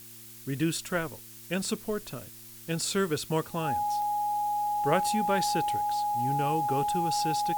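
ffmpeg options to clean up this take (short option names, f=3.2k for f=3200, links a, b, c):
-af "adeclick=t=4,bandreject=f=113.9:t=h:w=4,bandreject=f=227.8:t=h:w=4,bandreject=f=341.7:t=h:w=4,bandreject=f=830:w=30,afftdn=nr=28:nf=-47"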